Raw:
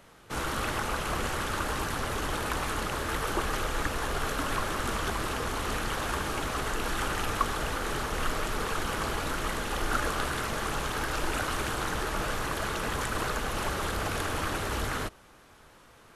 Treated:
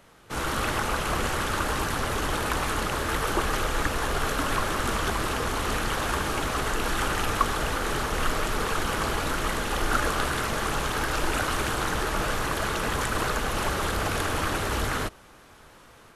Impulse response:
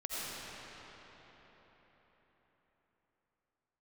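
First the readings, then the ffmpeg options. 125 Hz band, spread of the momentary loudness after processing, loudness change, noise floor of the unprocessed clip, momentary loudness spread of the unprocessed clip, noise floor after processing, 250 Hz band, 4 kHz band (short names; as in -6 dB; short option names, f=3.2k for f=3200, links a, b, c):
+4.0 dB, 2 LU, +4.0 dB, -55 dBFS, 2 LU, -52 dBFS, +4.0 dB, +4.0 dB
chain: -af "dynaudnorm=f=240:g=3:m=4dB"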